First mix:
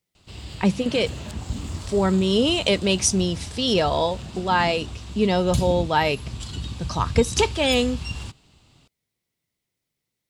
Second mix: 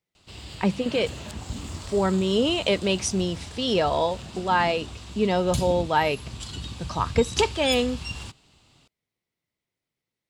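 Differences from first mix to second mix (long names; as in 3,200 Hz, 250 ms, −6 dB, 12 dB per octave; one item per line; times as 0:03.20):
speech: add high-shelf EQ 4,300 Hz −11 dB
master: add low-shelf EQ 270 Hz −5.5 dB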